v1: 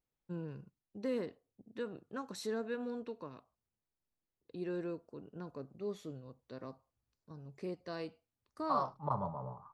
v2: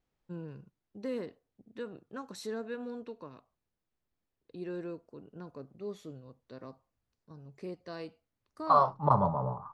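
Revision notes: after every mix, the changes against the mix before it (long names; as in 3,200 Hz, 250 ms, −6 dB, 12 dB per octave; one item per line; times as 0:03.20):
second voice +10.5 dB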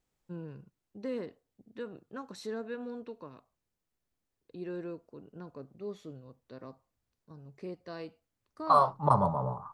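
first voice: add high-shelf EQ 8,800 Hz −9.5 dB
second voice: remove high-frequency loss of the air 130 metres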